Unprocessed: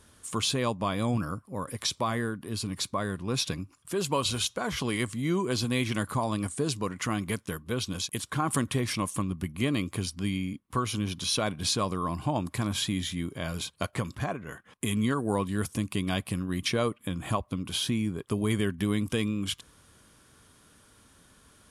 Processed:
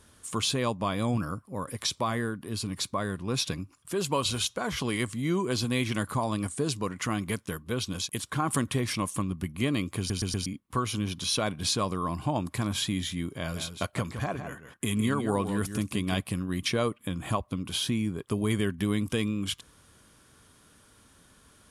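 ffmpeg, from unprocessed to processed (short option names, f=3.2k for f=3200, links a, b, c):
-filter_complex "[0:a]asettb=1/sr,asplit=3[a][b][c];[a]atrim=end=13.404[d];[b]atrim=start=13.4:end=16.21,asetpts=PTS-STARTPTS,afade=t=in:d=0.004:c=qsin,afade=t=out:st=2.806:d=0.004:c=qsin,aecho=1:1:161:0.355,atrim=end_sample=123921[e];[c]atrim=start=16.206[f];[d][e]acrossfade=d=0.004:c1=hsin:c2=qsin[g];[g][f]acrossfade=d=0.004:c1=qsin:c2=hsin,asplit=5[h][i][j][k][l];[h]atrim=end=10.102[m];[i]atrim=start=9.978:end=10.102[n];[j]atrim=start=9.978:end=10.102[o];[k]atrim=start=9.978:end=10.102[p];[l]atrim=start=10.458[q];[m][n]acrossfade=d=0.004:c1=hsin:c2=hsin[r];[r][o]acrossfade=d=0.004:c1=hsin:c2=hsin[s];[s][p]acrossfade=d=0.004:c1=hsin:c2=hsin[t];[t][q]acrossfade=d=0.004:c1=hsin:c2=hsin"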